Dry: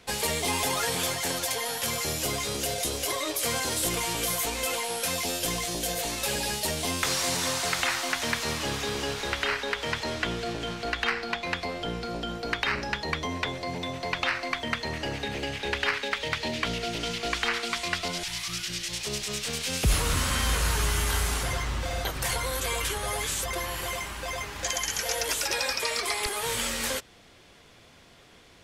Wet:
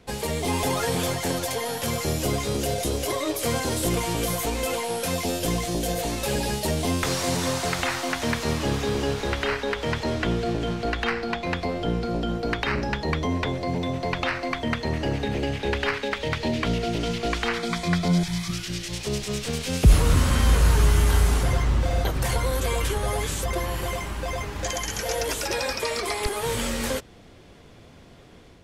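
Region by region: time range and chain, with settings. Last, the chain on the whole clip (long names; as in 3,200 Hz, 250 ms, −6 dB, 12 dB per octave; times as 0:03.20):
0:17.57–0:18.51: Butterworth band-reject 2,800 Hz, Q 7.9 + parametric band 170 Hz +14.5 dB 0.24 octaves
whole clip: tilt shelving filter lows +6 dB, about 740 Hz; automatic gain control gain up to 4 dB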